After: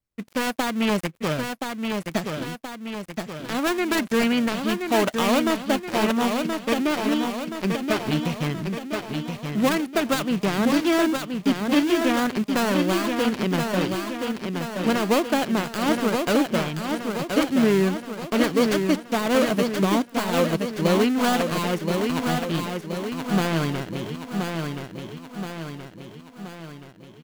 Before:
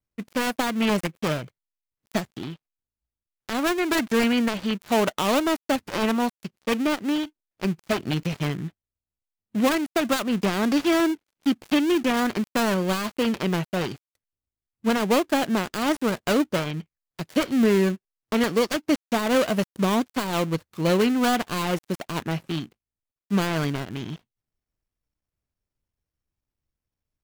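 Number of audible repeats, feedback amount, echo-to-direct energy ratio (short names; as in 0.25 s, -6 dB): 6, 54%, -3.5 dB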